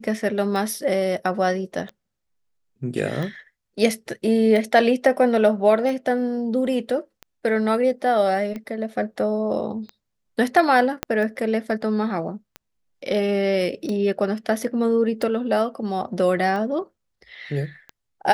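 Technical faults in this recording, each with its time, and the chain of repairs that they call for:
tick 45 rpm
11.03 pop -8 dBFS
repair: de-click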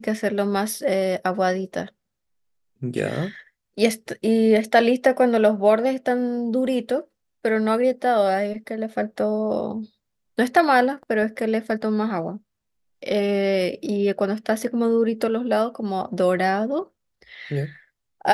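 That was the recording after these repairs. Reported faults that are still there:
11.03 pop

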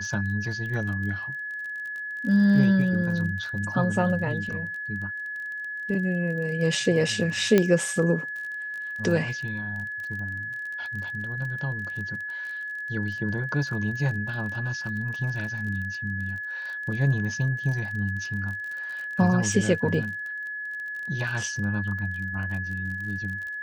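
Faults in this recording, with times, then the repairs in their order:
crackle 29/s -34 dBFS
tone 1700 Hz -31 dBFS
7.58 pop -7 dBFS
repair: de-click; notch 1700 Hz, Q 30

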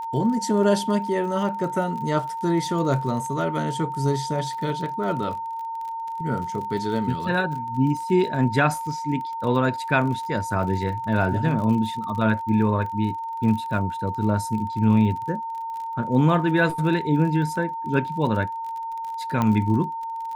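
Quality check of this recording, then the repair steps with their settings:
crackle 41/s -32 dBFS
tone 910 Hz -28 dBFS
19.42 pop -11 dBFS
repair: de-click; notch 910 Hz, Q 30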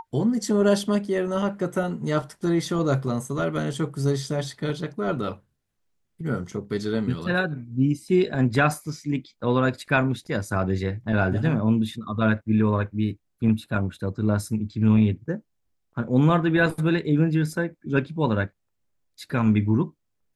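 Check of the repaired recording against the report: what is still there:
none

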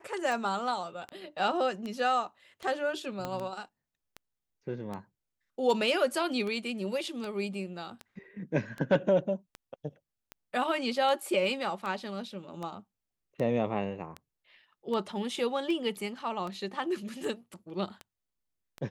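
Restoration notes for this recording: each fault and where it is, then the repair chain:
tick 78 rpm
3.25 pop -20 dBFS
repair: de-click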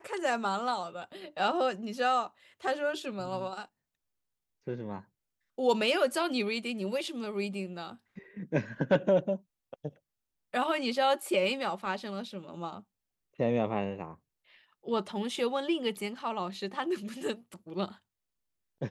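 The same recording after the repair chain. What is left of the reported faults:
3.25 pop

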